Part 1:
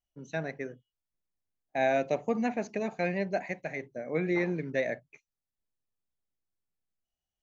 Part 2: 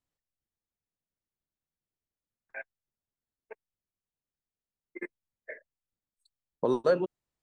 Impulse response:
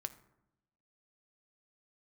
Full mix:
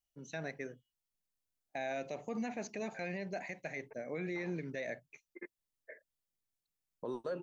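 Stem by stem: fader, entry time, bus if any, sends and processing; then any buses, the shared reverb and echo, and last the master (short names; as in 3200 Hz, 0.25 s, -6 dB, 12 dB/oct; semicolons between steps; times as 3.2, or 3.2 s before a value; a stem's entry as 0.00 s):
-5.0 dB, 0.00 s, no send, high shelf 2800 Hz +8.5 dB
-9.0 dB, 0.40 s, no send, low-pass opened by the level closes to 1900 Hz, open at -26 dBFS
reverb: off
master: limiter -30.5 dBFS, peak gain reduction 10 dB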